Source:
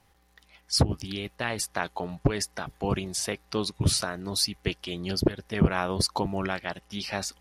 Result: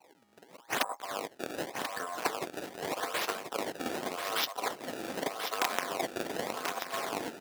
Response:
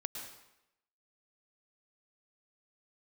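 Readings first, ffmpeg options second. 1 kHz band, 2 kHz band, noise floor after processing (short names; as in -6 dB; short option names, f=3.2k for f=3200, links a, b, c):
0.0 dB, -1.5 dB, -61 dBFS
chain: -filter_complex "[0:a]aeval=exprs='(mod(3.98*val(0)+1,2)-1)/3.98':c=same,acompressor=threshold=-44dB:ratio=2.5,highshelf=f=11k:g=11,anlmdn=0.0000158,aeval=exprs='val(0)*sin(2*PI*880*n/s)':c=same,asplit=2[a][b];[b]adelay=777,lowpass=f=2.3k:p=1,volume=-4dB,asplit=2[c][d];[d]adelay=777,lowpass=f=2.3k:p=1,volume=0.26,asplit=2[e][f];[f]adelay=777,lowpass=f=2.3k:p=1,volume=0.26,asplit=2[g][h];[h]adelay=777,lowpass=f=2.3k:p=1,volume=0.26[i];[c][e][g][i]amix=inputs=4:normalize=0[j];[a][j]amix=inputs=2:normalize=0,acrusher=samples=24:mix=1:aa=0.000001:lfo=1:lforange=38.4:lforate=0.84,highpass=290,asplit=2[k][l];[l]aecho=0:1:1036:0.422[m];[k][m]amix=inputs=2:normalize=0,volume=9dB"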